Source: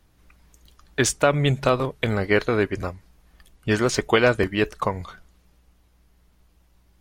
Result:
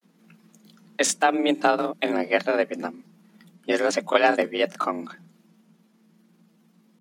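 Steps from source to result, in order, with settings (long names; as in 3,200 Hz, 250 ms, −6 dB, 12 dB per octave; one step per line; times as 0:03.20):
granular cloud, spray 21 ms, pitch spread up and down by 0 semitones
frequency shifter +160 Hz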